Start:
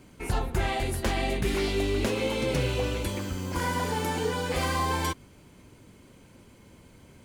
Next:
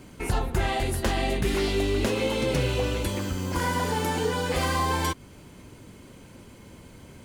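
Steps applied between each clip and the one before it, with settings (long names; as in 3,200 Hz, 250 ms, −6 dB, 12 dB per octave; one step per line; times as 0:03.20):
notch filter 2,300 Hz, Q 24
in parallel at −0.5 dB: downward compressor, threshold −36 dBFS, peak gain reduction 13.5 dB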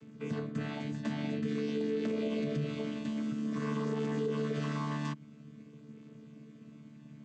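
channel vocoder with a chord as carrier bare fifth, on D3
parametric band 790 Hz −14.5 dB 0.56 octaves
brickwall limiter −21.5 dBFS, peak gain reduction 6.5 dB
level −3.5 dB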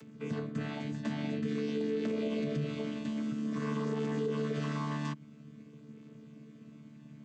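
upward compression, threshold −51 dBFS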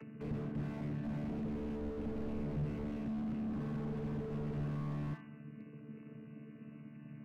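linear-phase brick-wall low-pass 3,000 Hz
on a send at −11.5 dB: convolution reverb RT60 0.65 s, pre-delay 33 ms
on the sum: slew-rate limiting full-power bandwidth 3 Hz
level +1.5 dB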